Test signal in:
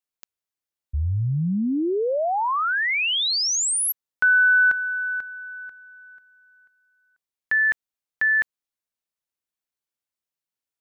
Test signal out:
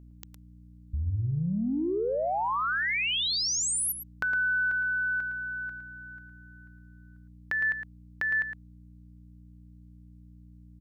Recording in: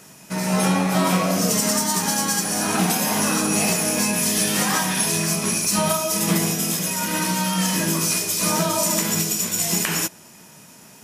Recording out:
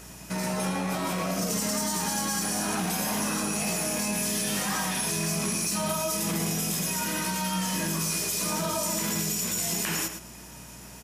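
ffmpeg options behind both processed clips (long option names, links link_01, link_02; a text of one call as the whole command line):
ffmpeg -i in.wav -filter_complex "[0:a]acompressor=threshold=-29dB:ratio=6:attack=9.1:release=22:knee=6:detection=rms,aeval=exprs='val(0)+0.00355*(sin(2*PI*60*n/s)+sin(2*PI*2*60*n/s)/2+sin(2*PI*3*60*n/s)/3+sin(2*PI*4*60*n/s)/4+sin(2*PI*5*60*n/s)/5)':channel_layout=same,asplit=2[link_01][link_02];[link_02]adelay=110.8,volume=-8dB,highshelf=frequency=4000:gain=-2.49[link_03];[link_01][link_03]amix=inputs=2:normalize=0" out.wav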